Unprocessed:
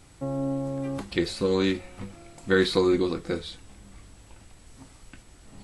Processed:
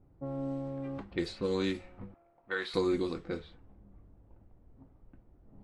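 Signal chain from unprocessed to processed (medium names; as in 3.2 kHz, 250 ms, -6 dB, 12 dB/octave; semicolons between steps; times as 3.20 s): level-controlled noise filter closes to 530 Hz, open at -20.5 dBFS; 2.14–2.74 s: three-band isolator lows -19 dB, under 560 Hz, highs -12 dB, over 3.5 kHz; trim -7.5 dB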